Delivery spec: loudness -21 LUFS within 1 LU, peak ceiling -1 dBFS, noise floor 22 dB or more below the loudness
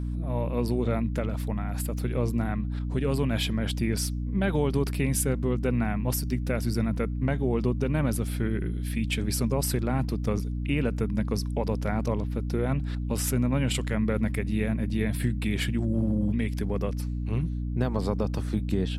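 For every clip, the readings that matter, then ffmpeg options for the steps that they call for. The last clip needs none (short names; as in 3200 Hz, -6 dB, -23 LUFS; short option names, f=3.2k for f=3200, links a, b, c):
hum 60 Hz; harmonics up to 300 Hz; hum level -28 dBFS; loudness -28.0 LUFS; peak -13.0 dBFS; loudness target -21.0 LUFS
-> -af "bandreject=f=60:t=h:w=4,bandreject=f=120:t=h:w=4,bandreject=f=180:t=h:w=4,bandreject=f=240:t=h:w=4,bandreject=f=300:t=h:w=4"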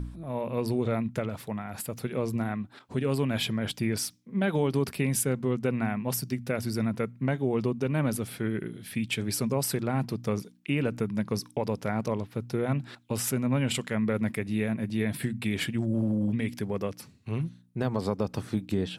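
hum none; loudness -30.0 LUFS; peak -14.5 dBFS; loudness target -21.0 LUFS
-> -af "volume=9dB"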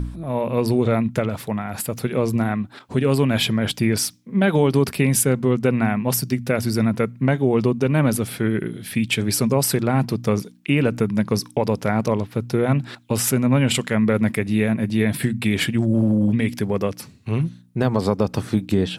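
loudness -21.0 LUFS; peak -5.5 dBFS; noise floor -46 dBFS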